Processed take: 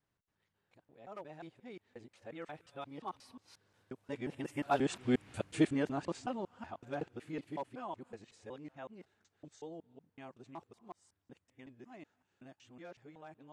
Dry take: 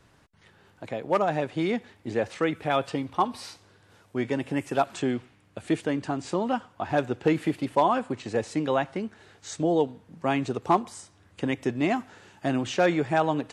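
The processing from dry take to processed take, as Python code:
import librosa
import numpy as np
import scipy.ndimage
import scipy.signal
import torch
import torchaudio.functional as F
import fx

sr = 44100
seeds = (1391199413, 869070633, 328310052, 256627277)

y = fx.local_reverse(x, sr, ms=182.0)
y = fx.doppler_pass(y, sr, speed_mps=8, closest_m=1.7, pass_at_s=5.3)
y = y * 10.0 ** (2.0 / 20.0)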